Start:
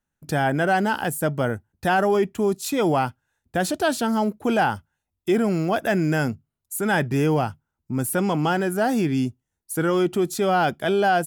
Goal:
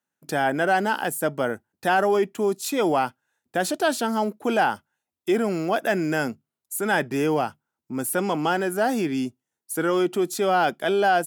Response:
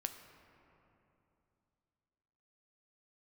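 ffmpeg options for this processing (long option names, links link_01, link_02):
-af "highpass=250"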